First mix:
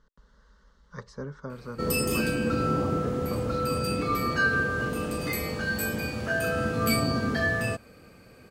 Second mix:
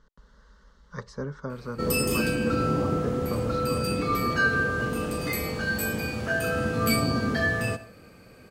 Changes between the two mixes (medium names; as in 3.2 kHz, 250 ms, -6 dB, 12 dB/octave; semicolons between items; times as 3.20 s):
speech +3.5 dB; reverb: on, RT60 0.45 s